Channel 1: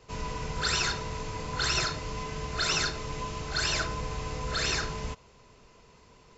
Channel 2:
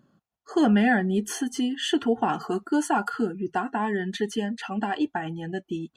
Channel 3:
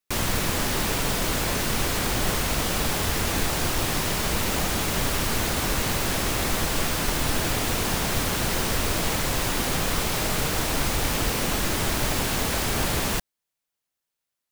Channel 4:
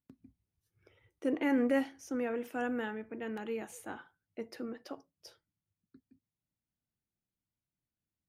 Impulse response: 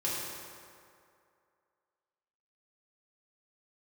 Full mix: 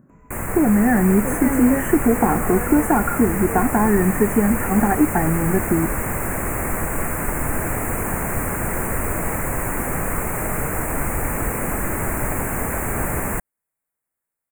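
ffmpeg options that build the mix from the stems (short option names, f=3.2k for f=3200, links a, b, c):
-filter_complex "[0:a]volume=-17dB[a];[1:a]lowshelf=f=500:g=9,acompressor=threshold=-17dB:ratio=6,volume=2.5dB[b];[2:a]adelay=200,volume=-1dB[c];[3:a]volume=2dB[d];[a][b][c][d]amix=inputs=4:normalize=0,asuperstop=centerf=4200:order=8:qfactor=0.78,dynaudnorm=f=570:g=3:m=3.5dB"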